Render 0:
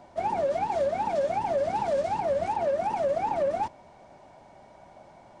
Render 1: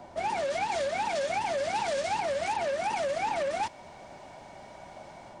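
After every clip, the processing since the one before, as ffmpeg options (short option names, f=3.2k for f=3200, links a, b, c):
-filter_complex "[0:a]acrossover=split=290|1600[a][b][c];[a]acompressor=threshold=-52dB:ratio=5[d];[b]alimiter=level_in=6dB:limit=-24dB:level=0:latency=1:release=206,volume=-6dB[e];[c]dynaudnorm=f=160:g=3:m=6dB[f];[d][e][f]amix=inputs=3:normalize=0,volume=4dB"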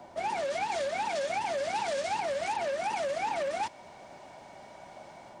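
-filter_complex "[0:a]acrossover=split=290[a][b];[a]acrusher=bits=5:mode=log:mix=0:aa=0.000001[c];[c][b]amix=inputs=2:normalize=0,lowshelf=f=91:g=-9.5,volume=-1.5dB"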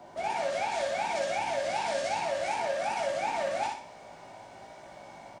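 -filter_complex "[0:a]asplit=2[a][b];[b]adelay=18,volume=-4.5dB[c];[a][c]amix=inputs=2:normalize=0,aecho=1:1:61|122|183|244|305:0.708|0.283|0.113|0.0453|0.0181,volume=-2dB"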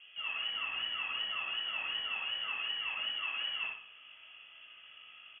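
-af "lowpass=f=3k:t=q:w=0.5098,lowpass=f=3k:t=q:w=0.6013,lowpass=f=3k:t=q:w=0.9,lowpass=f=3k:t=q:w=2.563,afreqshift=-3500,volume=-6.5dB"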